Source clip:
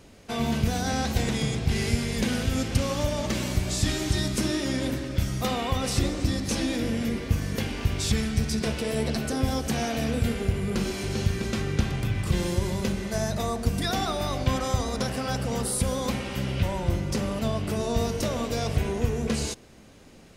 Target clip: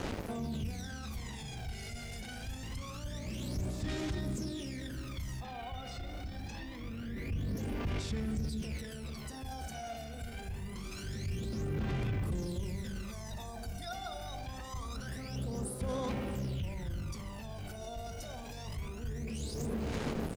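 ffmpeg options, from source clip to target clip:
-filter_complex "[0:a]asplit=2[a][b];[b]adelay=435,lowpass=f=2.6k:p=1,volume=-18dB,asplit=2[c][d];[d]adelay=435,lowpass=f=2.6k:p=1,volume=0.33,asplit=2[e][f];[f]adelay=435,lowpass=f=2.6k:p=1,volume=0.33[g];[a][c][e][g]amix=inputs=4:normalize=0,acontrast=45,asettb=1/sr,asplit=3[h][i][j];[h]atrim=end=5.404[k];[i]atrim=start=5.4:end=7.57,asetpts=PTS-STARTPTS,afade=t=in:d=0.004:c=qsin,afade=t=out:st=2.166:d=0.004:c=qsin,lowpass=3.5k[l];[j]atrim=start=7.566[m];[k][l]acrossfade=d=0.004:c1=hsin:c2=qsin[n];[n][m]acrossfade=d=0.004:c1=qsin:c2=hsin,aecho=1:1:126:0.0841,acrusher=bits=6:mix=0:aa=0.5,alimiter=level_in=20.5dB:limit=-24dB:level=0:latency=1:release=104,volume=-20.5dB,aphaser=in_gain=1:out_gain=1:delay=1.4:decay=0.7:speed=0.25:type=sinusoidal,volume=7dB"

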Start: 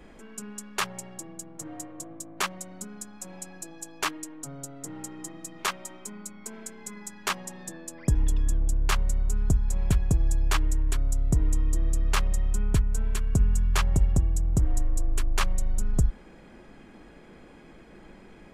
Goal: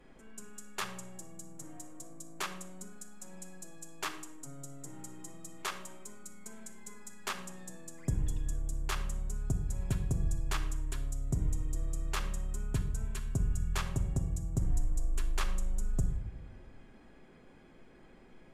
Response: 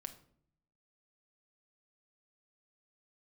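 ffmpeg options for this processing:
-filter_complex "[1:a]atrim=start_sample=2205,asetrate=29988,aresample=44100[a];[0:a][a]afir=irnorm=-1:irlink=0,volume=-6.5dB"

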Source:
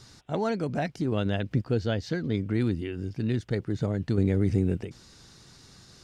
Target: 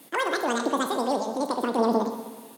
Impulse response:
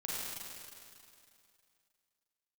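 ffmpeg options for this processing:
-filter_complex "[0:a]highpass=f=59:w=0.5412,highpass=f=59:w=1.3066,aecho=1:1:289|578|867|1156|1445|1734:0.178|0.105|0.0619|0.0365|0.0215|0.0127,asplit=2[a][b];[1:a]atrim=start_sample=2205[c];[b][c]afir=irnorm=-1:irlink=0,volume=-7dB[d];[a][d]amix=inputs=2:normalize=0,asetrate=103194,aresample=44100,lowshelf=f=130:g=-11.5"

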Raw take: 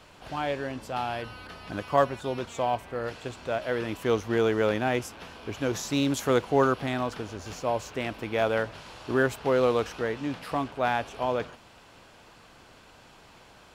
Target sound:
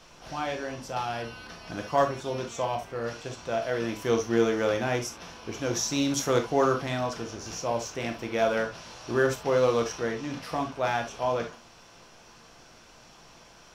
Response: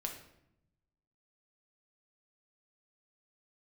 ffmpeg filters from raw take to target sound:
-filter_complex "[0:a]equalizer=f=5.7k:t=o:w=0.33:g=13[a];[1:a]atrim=start_sample=2205,atrim=end_sample=3528[b];[a][b]afir=irnorm=-1:irlink=0"

